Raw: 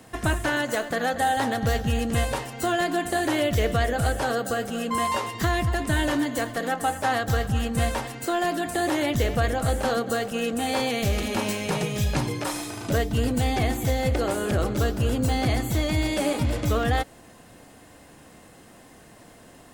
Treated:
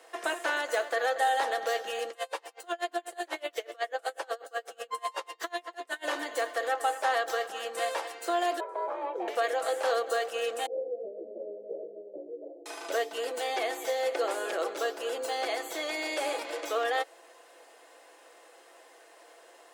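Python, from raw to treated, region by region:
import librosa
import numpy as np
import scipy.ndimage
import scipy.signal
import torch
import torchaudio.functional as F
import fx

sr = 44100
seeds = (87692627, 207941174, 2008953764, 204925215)

y = fx.chain(x, sr, fx.low_shelf(hz=150.0, db=-10.5),
    fx.tremolo_db(hz=8.1, depth_db=30), at=(2.1, 6.05))
y = fx.chain(y, sr, fx.savgol(points=65),
    fx.ring_mod(carrier_hz=280.0), at=(8.6, 9.28))
y = fx.chain(y, sr, fx.steep_lowpass(hz=620.0, slope=72),
    fx.low_shelf(hz=420.0, db=3.5),
    fx.ensemble(), at=(10.66, 12.66))
y = scipy.signal.sosfilt(scipy.signal.butter(6, 400.0, 'highpass', fs=sr, output='sos'), y)
y = fx.high_shelf(y, sr, hz=9400.0, db=-9.0)
y = y + 0.37 * np.pad(y, (int(6.0 * sr / 1000.0), 0))[:len(y)]
y = y * 10.0 ** (-3.0 / 20.0)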